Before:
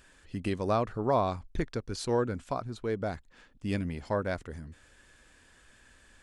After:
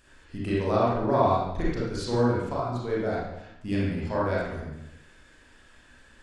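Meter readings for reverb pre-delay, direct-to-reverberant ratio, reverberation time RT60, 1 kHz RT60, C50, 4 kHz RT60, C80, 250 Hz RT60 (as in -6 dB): 31 ms, -7.0 dB, 0.85 s, 0.85 s, -2.0 dB, 0.75 s, 2.5 dB, 0.95 s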